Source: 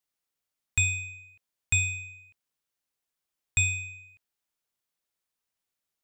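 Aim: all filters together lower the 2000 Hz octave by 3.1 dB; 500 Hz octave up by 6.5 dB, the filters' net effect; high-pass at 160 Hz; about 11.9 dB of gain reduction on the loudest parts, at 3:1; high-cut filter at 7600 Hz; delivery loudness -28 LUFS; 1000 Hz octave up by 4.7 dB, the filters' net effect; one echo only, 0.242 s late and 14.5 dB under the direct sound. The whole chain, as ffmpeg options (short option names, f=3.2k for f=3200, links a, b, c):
-af "highpass=160,lowpass=7.6k,equalizer=f=500:t=o:g=6.5,equalizer=f=1k:t=o:g=6,equalizer=f=2k:t=o:g=-5.5,acompressor=threshold=-40dB:ratio=3,aecho=1:1:242:0.188,volume=13.5dB"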